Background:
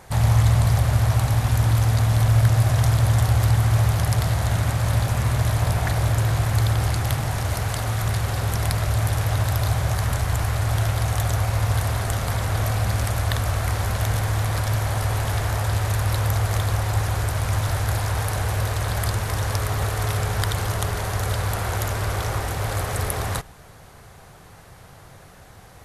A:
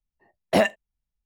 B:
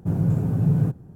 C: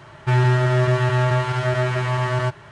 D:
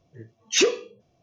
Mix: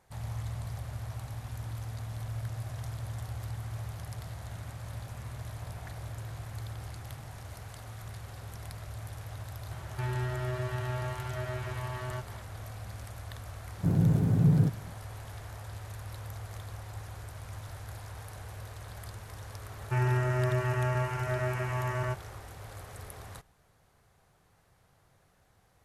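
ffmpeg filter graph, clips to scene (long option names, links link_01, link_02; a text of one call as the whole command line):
ffmpeg -i bed.wav -i cue0.wav -i cue1.wav -i cue2.wav -filter_complex "[3:a]asplit=2[link_01][link_02];[0:a]volume=-20dB[link_03];[link_01]acompressor=mode=upward:threshold=-23dB:ratio=2.5:attack=3.2:release=140:knee=2.83:detection=peak[link_04];[link_02]asuperstop=centerf=3900:order=8:qfactor=1.7[link_05];[link_04]atrim=end=2.71,asetpts=PTS-STARTPTS,volume=-16dB,afade=type=in:duration=0.004:curve=hsin,afade=type=out:start_time=2.706:duration=0.004:curve=hsin,adelay=9710[link_06];[2:a]atrim=end=1.15,asetpts=PTS-STARTPTS,volume=-3dB,afade=type=in:duration=0.004:curve=hsin,afade=type=out:start_time=1.146:duration=0.004:curve=hsin,adelay=13780[link_07];[link_05]atrim=end=2.71,asetpts=PTS-STARTPTS,volume=-10.5dB,afade=type=in:duration=0.004:curve=hsin,afade=type=out:start_time=2.706:duration=0.004:curve=hsin,adelay=19640[link_08];[link_03][link_06][link_07][link_08]amix=inputs=4:normalize=0" out.wav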